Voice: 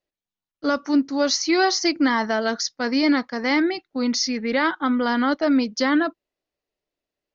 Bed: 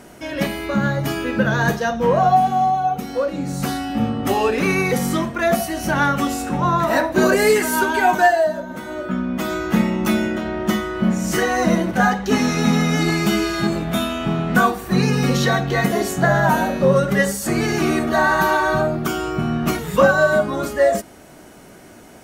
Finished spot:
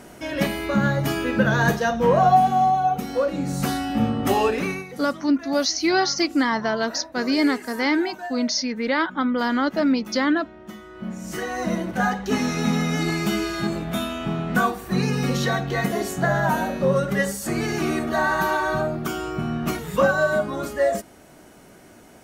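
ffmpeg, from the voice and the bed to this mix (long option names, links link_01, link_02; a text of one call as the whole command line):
ffmpeg -i stem1.wav -i stem2.wav -filter_complex "[0:a]adelay=4350,volume=-1dB[link_01];[1:a]volume=13.5dB,afade=type=out:start_time=4.4:duration=0.46:silence=0.11885,afade=type=in:start_time=10.76:duration=1.42:silence=0.188365[link_02];[link_01][link_02]amix=inputs=2:normalize=0" out.wav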